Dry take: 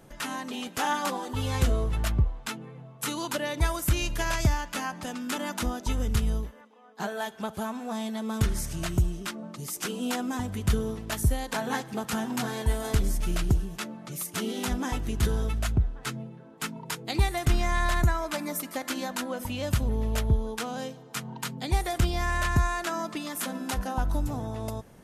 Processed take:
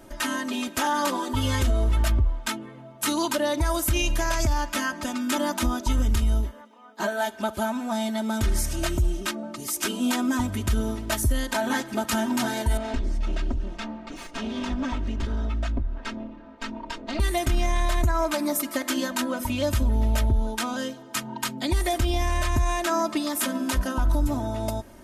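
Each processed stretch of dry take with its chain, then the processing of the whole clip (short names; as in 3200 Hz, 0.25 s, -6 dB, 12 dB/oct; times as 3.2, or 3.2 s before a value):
12.77–17.2 minimum comb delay 4.3 ms + compressor 3:1, threshold -31 dBFS + air absorption 140 m
whole clip: comb 3.2 ms, depth 89%; limiter -18 dBFS; gain +3.5 dB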